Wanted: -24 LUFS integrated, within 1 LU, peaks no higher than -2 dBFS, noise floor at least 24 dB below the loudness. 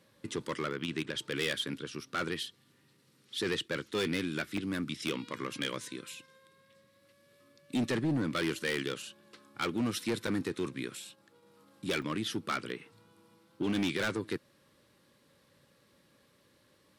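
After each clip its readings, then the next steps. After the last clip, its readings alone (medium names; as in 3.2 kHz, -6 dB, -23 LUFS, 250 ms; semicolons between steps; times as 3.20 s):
clipped samples 1.0%; clipping level -25.5 dBFS; dropouts 3; longest dropout 4.5 ms; loudness -35.0 LUFS; peak level -25.5 dBFS; loudness target -24.0 LUFS
-> clip repair -25.5 dBFS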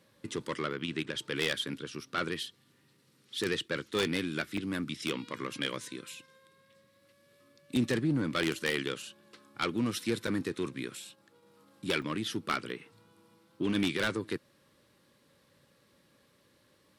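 clipped samples 0.0%; dropouts 3; longest dropout 4.5 ms
-> interpolate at 4.57/10.27/12.02 s, 4.5 ms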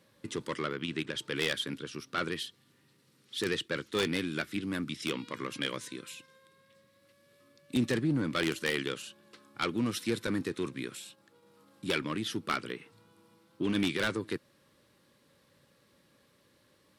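dropouts 0; loudness -34.0 LUFS; peak level -16.5 dBFS; loudness target -24.0 LUFS
-> trim +10 dB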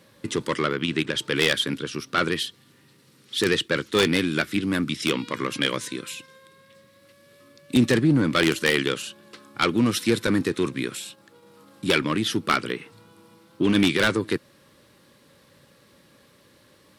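loudness -24.0 LUFS; peak level -6.5 dBFS; noise floor -57 dBFS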